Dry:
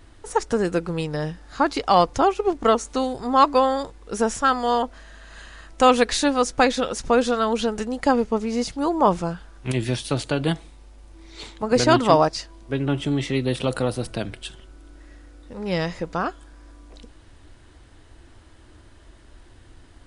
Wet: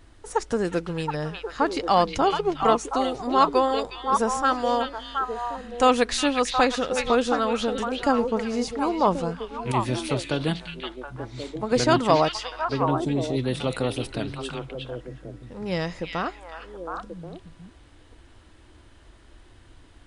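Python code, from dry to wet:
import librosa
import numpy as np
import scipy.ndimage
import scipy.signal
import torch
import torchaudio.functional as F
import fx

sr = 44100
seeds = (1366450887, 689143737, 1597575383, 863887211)

y = fx.spec_box(x, sr, start_s=12.9, length_s=0.48, low_hz=1000.0, high_hz=3400.0, gain_db=-13)
y = fx.echo_stepped(y, sr, ms=361, hz=2800.0, octaves=-1.4, feedback_pct=70, wet_db=0)
y = y * librosa.db_to_amplitude(-3.0)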